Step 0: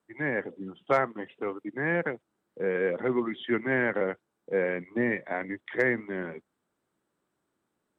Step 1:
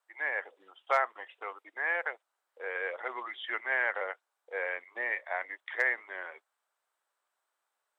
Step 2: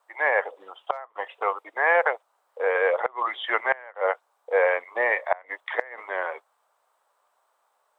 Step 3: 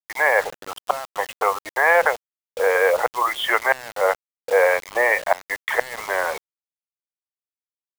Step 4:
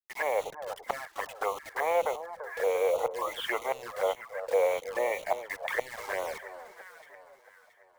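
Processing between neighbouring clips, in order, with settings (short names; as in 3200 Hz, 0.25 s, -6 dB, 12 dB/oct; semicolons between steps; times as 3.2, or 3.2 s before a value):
HPF 670 Hz 24 dB/oct
band shelf 730 Hz +9 dB; flipped gate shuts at -16 dBFS, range -25 dB; gain +8 dB
in parallel at +2 dB: compressor 20:1, threshold -31 dBFS, peak gain reduction 16.5 dB; on the sum: bit-crush 6-bit; gain +2.5 dB
echo with dull and thin repeats by turns 0.337 s, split 1100 Hz, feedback 61%, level -10 dB; envelope flanger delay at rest 9.5 ms, full sweep at -17.5 dBFS; gain -7 dB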